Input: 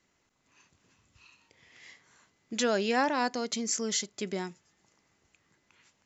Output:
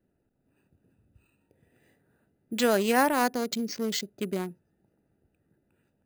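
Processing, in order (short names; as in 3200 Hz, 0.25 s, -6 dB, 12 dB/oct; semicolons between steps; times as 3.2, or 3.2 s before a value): Wiener smoothing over 41 samples; careless resampling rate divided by 4×, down filtered, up hold; gain +4.5 dB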